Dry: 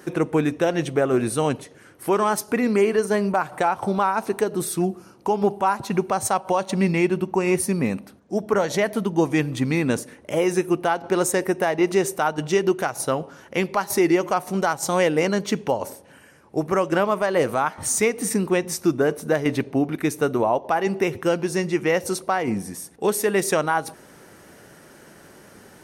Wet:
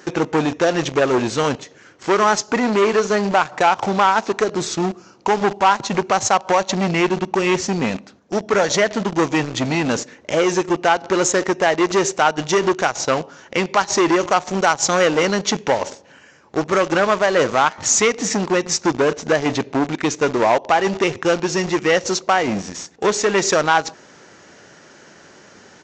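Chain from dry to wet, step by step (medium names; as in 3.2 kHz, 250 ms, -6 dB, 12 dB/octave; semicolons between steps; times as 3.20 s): high-pass 42 Hz 6 dB/octave; tilt EQ +1.5 dB/octave; in parallel at -3 dB: bit crusher 5-bit; on the sum: resampled via 16 kHz; transformer saturation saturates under 1.4 kHz; trim +3 dB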